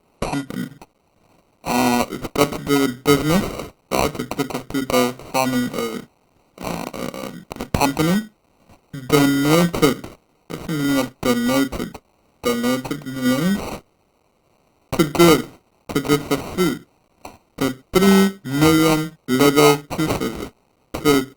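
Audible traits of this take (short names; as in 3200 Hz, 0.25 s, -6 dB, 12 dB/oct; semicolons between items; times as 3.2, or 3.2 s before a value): a quantiser's noise floor 10-bit, dither triangular; tremolo saw down 0.83 Hz, depth 30%; aliases and images of a low sample rate 1700 Hz, jitter 0%; Opus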